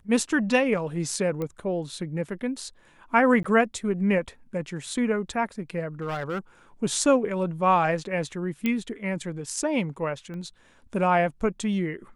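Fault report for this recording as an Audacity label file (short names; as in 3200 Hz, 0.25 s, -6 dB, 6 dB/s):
1.420000	1.420000	pop -19 dBFS
3.430000	3.440000	gap
6.010000	6.390000	clipped -25.5 dBFS
8.660000	8.660000	pop -13 dBFS
10.340000	10.340000	pop -28 dBFS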